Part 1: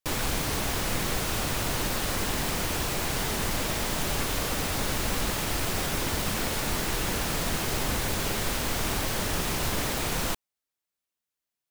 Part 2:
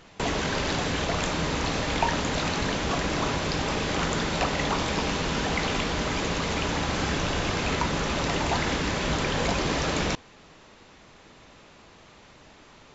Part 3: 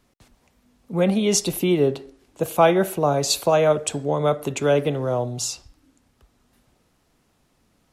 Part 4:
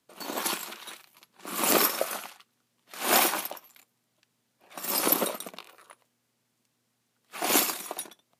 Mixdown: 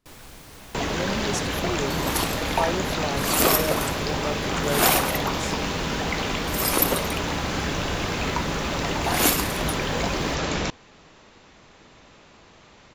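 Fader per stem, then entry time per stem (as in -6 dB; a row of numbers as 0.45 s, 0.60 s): -16.0 dB, +0.5 dB, -10.5 dB, +2.5 dB; 0.00 s, 0.55 s, 0.00 s, 1.70 s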